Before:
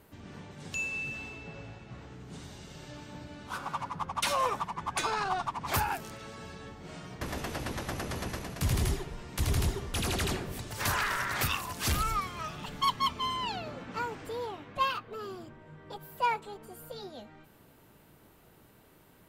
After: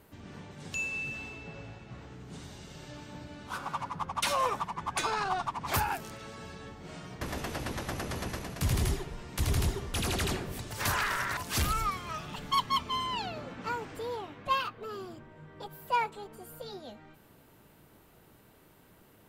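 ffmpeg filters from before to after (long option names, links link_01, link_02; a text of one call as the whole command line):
ffmpeg -i in.wav -filter_complex "[0:a]asplit=2[link_01][link_02];[link_01]atrim=end=11.372[link_03];[link_02]atrim=start=11.668[link_04];[link_03][link_04]acrossfade=duration=0.004:curve1=hsin:curve2=hsin" out.wav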